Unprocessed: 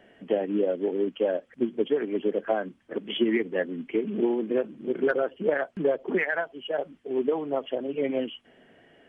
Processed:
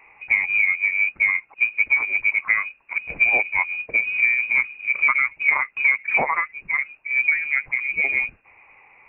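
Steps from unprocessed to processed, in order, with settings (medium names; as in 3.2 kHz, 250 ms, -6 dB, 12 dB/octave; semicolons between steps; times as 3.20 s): frequency inversion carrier 2.7 kHz; trim +5.5 dB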